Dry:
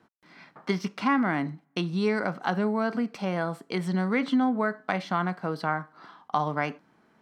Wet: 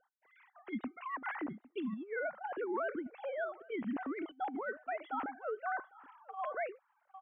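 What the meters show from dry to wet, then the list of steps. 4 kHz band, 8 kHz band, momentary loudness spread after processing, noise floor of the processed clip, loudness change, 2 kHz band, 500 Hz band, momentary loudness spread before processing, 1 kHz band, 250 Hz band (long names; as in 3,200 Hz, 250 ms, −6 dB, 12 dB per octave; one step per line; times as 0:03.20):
−20.5 dB, can't be measured, 5 LU, −77 dBFS, −11.5 dB, −9.5 dB, −9.0 dB, 7 LU, −10.5 dB, −14.5 dB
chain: three sine waves on the formant tracks
high-shelf EQ 2,300 Hz −8.5 dB
in parallel at −10.5 dB: soft clipping −16.5 dBFS, distortion −11 dB
on the sum: parametric band 3,000 Hz −2.5 dB 0.6 octaves
on a send: single-tap delay 803 ms −23.5 dB
on the sum: compressor whose output falls as the input rises −27 dBFS, ratio −0.5
tuned comb filter 760 Hz, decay 0.26 s, mix 40%
level −6 dB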